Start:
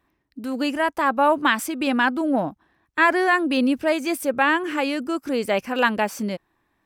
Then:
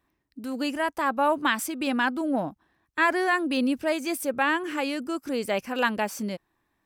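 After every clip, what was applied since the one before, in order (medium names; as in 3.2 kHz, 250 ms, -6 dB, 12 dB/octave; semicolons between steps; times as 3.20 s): tone controls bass +1 dB, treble +4 dB; trim -5 dB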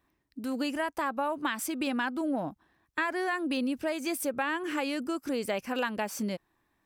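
compression, threshold -27 dBFS, peak gain reduction 10 dB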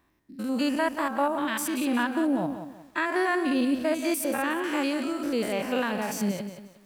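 spectrogram pixelated in time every 100 ms; bit-crushed delay 180 ms, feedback 35%, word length 10-bit, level -9.5 dB; trim +6.5 dB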